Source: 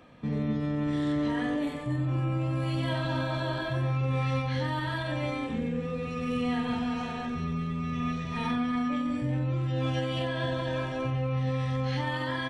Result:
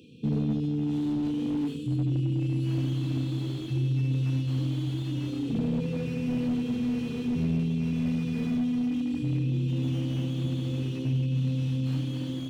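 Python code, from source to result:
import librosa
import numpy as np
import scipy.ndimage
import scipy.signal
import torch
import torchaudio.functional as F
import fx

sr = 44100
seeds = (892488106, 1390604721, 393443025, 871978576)

p1 = scipy.signal.sosfilt(scipy.signal.butter(4, 88.0, 'highpass', fs=sr, output='sos'), x)
p2 = fx.rider(p1, sr, range_db=10, speed_s=0.5)
p3 = fx.brickwall_bandstop(p2, sr, low_hz=500.0, high_hz=2400.0)
p4 = p3 + fx.echo_diffused(p3, sr, ms=910, feedback_pct=72, wet_db=-13.5, dry=0)
p5 = fx.slew_limit(p4, sr, full_power_hz=12.0)
y = p5 * 10.0 ** (2.5 / 20.0)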